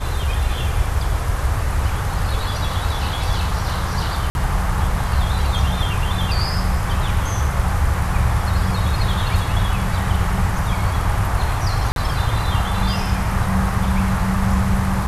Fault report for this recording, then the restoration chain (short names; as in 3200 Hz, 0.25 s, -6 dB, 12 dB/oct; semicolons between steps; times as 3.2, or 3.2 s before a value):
4.3–4.35 gap 51 ms
11.92–11.96 gap 42 ms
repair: interpolate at 4.3, 51 ms; interpolate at 11.92, 42 ms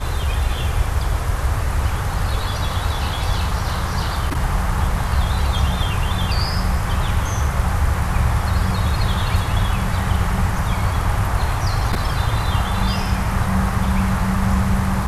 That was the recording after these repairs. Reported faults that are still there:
none